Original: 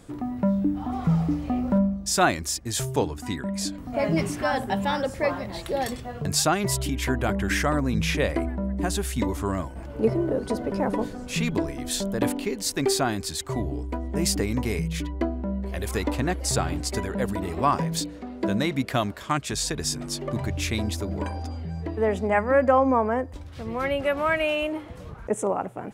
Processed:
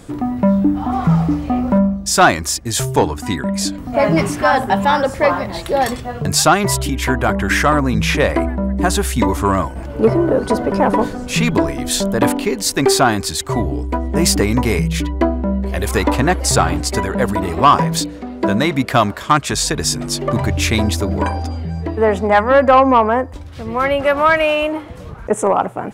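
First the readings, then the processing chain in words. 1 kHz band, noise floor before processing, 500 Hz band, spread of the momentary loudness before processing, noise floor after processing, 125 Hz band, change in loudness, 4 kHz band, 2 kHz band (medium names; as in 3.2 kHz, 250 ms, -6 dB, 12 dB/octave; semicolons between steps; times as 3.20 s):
+12.0 dB, -40 dBFS, +9.5 dB, 8 LU, -31 dBFS, +9.0 dB, +10.0 dB, +9.0 dB, +10.5 dB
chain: dynamic bell 1.1 kHz, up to +7 dB, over -39 dBFS, Q 0.99; gain riding within 3 dB 2 s; saturation -10 dBFS, distortion -18 dB; trim +8 dB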